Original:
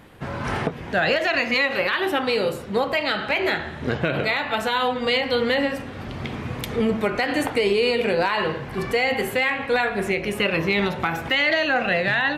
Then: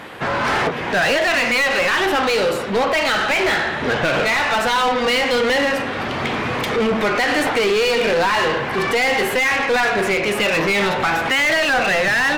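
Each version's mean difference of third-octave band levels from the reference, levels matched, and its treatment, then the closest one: 5.5 dB: overdrive pedal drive 24 dB, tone 3.6 kHz, clips at -11 dBFS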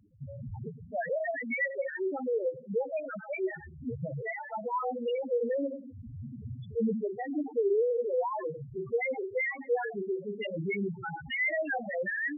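21.5 dB: loudest bins only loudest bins 2; trim -4.5 dB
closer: first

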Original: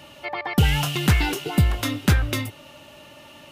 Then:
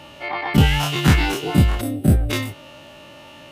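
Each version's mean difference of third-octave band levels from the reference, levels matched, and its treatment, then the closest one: 3.0 dB: every event in the spectrogram widened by 60 ms; treble shelf 7.7 kHz -8 dB; time-frequency box 1.81–2.31 s, 790–7700 Hz -18 dB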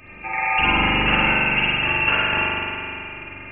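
13.0 dB: high-pass 230 Hz 24 dB/octave; frequency inversion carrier 3 kHz; spring tank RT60 2.7 s, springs 41 ms, chirp 35 ms, DRR -8 dB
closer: first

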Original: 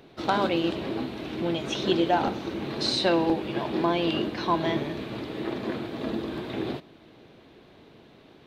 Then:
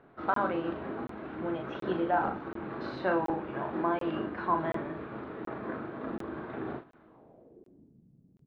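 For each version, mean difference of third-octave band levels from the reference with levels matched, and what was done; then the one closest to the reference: 6.0 dB: hum notches 50/100/150/200/250/300/350/400 Hz; low-pass sweep 1.4 kHz -> 170 Hz, 7.00–8.01 s; doubling 38 ms -6 dB; crackling interface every 0.73 s, samples 1024, zero, from 0.34 s; trim -7.5 dB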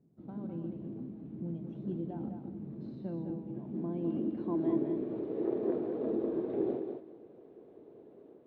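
11.0 dB: tilt EQ +4 dB/octave; level rider gain up to 4 dB; low-pass sweep 180 Hz -> 430 Hz, 3.50–5.39 s; on a send: thinning echo 204 ms, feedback 18%, high-pass 200 Hz, level -5.5 dB; on the sum: trim -4.5 dB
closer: first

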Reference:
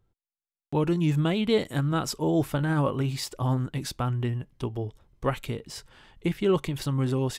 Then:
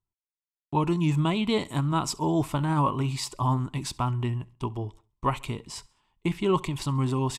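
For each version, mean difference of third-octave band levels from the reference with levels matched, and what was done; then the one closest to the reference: 2.5 dB: low-pass 11 kHz 12 dB/octave; gate -45 dBFS, range -18 dB; graphic EQ with 31 bands 500 Hz -10 dB, 1 kHz +12 dB, 1.6 kHz -8 dB, 2.5 kHz +3 dB, 8 kHz +5 dB; on a send: feedback delay 68 ms, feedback 45%, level -24 dB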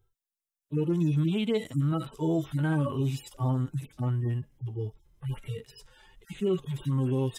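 6.0 dB: harmonic-percussive separation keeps harmonic; treble shelf 4.5 kHz +8.5 dB; band-stop 4.4 kHz, Q 11; peak limiter -19 dBFS, peak gain reduction 6 dB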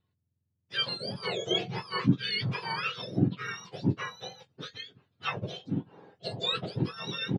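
12.5 dB: spectrum inverted on a logarithmic axis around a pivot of 1.2 kHz; low-pass 4 kHz 24 dB/octave; bass shelf 160 Hz +5 dB; doubling 22 ms -12 dB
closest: first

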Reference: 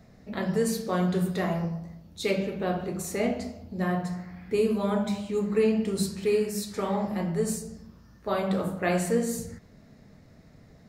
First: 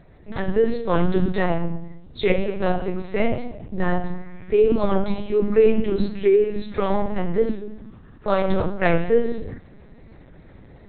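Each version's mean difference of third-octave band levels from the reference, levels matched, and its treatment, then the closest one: 6.0 dB: LPC vocoder at 8 kHz pitch kept; level rider gain up to 3.5 dB; warped record 45 rpm, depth 100 cents; trim +4.5 dB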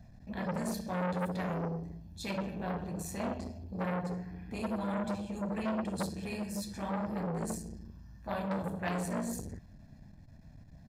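4.0 dB: bass shelf 140 Hz +10.5 dB; comb 1.2 ms, depth 80%; transformer saturation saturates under 1.3 kHz; trim -7.5 dB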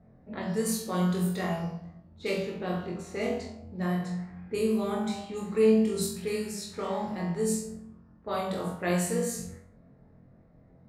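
3.0 dB: level-controlled noise filter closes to 1 kHz, open at -22 dBFS; treble shelf 6.1 kHz +9 dB; on a send: flutter echo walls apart 3.9 m, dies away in 0.41 s; on the sum: trim -5.5 dB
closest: third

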